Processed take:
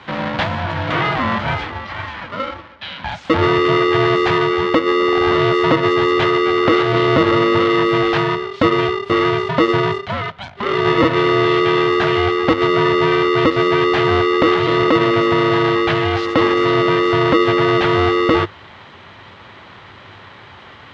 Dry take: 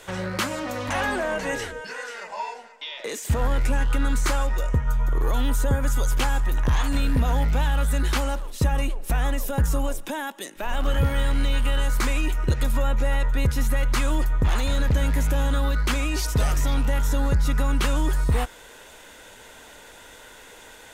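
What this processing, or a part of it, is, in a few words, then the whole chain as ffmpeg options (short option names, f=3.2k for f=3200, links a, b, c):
ring modulator pedal into a guitar cabinet: -af "aeval=exprs='val(0)*sgn(sin(2*PI*400*n/s))':c=same,highpass=77,equalizer=f=100:t=q:w=4:g=9,equalizer=f=430:t=q:w=4:g=-6,equalizer=f=2.5k:t=q:w=4:g=-4,lowpass=f=3.5k:w=0.5412,lowpass=f=3.5k:w=1.3066,volume=8dB"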